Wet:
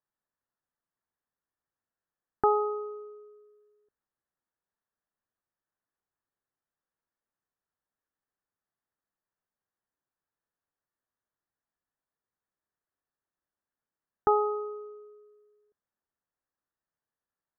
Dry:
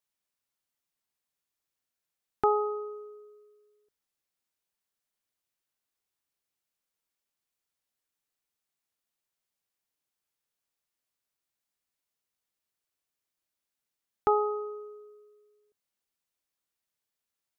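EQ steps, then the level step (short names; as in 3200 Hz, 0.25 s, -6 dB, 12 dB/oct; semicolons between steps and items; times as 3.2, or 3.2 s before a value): Chebyshev low-pass 1800 Hz, order 5; +1.5 dB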